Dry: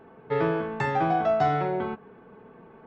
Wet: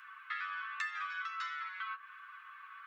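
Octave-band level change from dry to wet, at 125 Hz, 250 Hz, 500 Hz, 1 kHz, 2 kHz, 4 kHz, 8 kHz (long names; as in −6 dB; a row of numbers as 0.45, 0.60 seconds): below −40 dB, below −40 dB, below −40 dB, −15.5 dB, −3.0 dB, −3.0 dB, can't be measured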